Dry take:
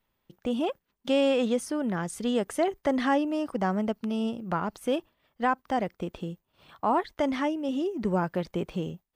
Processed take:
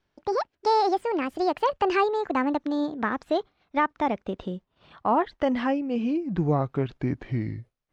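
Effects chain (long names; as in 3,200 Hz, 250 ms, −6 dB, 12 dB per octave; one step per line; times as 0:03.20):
gliding playback speed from 170% → 61%
high-frequency loss of the air 130 metres
level +3 dB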